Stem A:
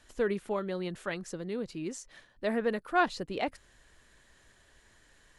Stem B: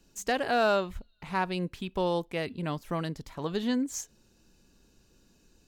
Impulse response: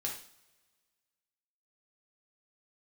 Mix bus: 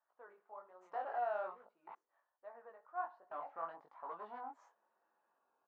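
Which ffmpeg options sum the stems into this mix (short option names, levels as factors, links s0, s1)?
-filter_complex "[0:a]flanger=delay=16:depth=6.7:speed=1.2,volume=0.224,asplit=2[s0][s1];[s1]volume=0.355[s2];[1:a]asoftclip=type=hard:threshold=0.0299,flanger=delay=17.5:depth=7.6:speed=0.87,adelay=650,volume=1.26,asplit=3[s3][s4][s5];[s3]atrim=end=1.95,asetpts=PTS-STARTPTS,afade=t=out:st=1.946:d=0.004:c=hsin[s6];[s4]atrim=start=1.95:end=3.31,asetpts=PTS-STARTPTS,volume=0[s7];[s5]atrim=start=3.31,asetpts=PTS-STARTPTS,afade=t=in:d=0.004:c=hsin[s8];[s6][s7][s8]concat=n=3:v=0:a=1[s9];[2:a]atrim=start_sample=2205[s10];[s2][s10]afir=irnorm=-1:irlink=0[s11];[s0][s9][s11]amix=inputs=3:normalize=0,asuperpass=centerf=920:order=4:qfactor=1.6"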